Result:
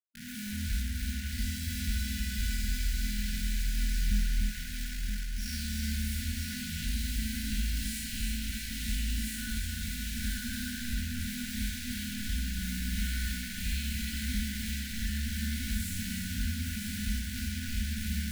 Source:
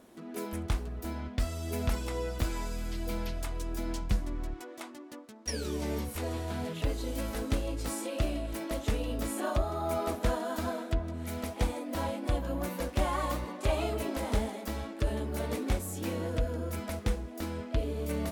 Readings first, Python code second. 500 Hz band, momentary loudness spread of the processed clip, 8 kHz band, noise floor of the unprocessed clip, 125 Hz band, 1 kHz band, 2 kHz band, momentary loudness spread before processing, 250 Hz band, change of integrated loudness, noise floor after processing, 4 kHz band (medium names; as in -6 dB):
under -35 dB, 3 LU, +5.5 dB, -45 dBFS, 0.0 dB, under -15 dB, +4.0 dB, 6 LU, -1.0 dB, 0.0 dB, -38 dBFS, +6.0 dB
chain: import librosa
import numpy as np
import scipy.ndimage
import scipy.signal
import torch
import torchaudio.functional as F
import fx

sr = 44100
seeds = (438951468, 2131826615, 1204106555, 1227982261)

p1 = fx.spec_blur(x, sr, span_ms=166.0)
p2 = fx.peak_eq(p1, sr, hz=4200.0, db=4.5, octaves=0.6)
p3 = p2 + 0.6 * np.pad(p2, (int(4.0 * sr / 1000.0), 0))[:len(p2)]
p4 = fx.rider(p3, sr, range_db=5, speed_s=2.0)
p5 = p3 + (p4 * librosa.db_to_amplitude(-2.5))
p6 = fx.quant_dither(p5, sr, seeds[0], bits=6, dither='none')
p7 = fx.brickwall_bandstop(p6, sr, low_hz=250.0, high_hz=1400.0)
p8 = fx.comb_fb(p7, sr, f0_hz=78.0, decay_s=1.5, harmonics='all', damping=0.0, mix_pct=40)
p9 = p8 + fx.echo_feedback(p8, sr, ms=970, feedback_pct=37, wet_db=-7.5, dry=0)
y = fx.echo_crushed(p9, sr, ms=298, feedback_pct=35, bits=10, wet_db=-5)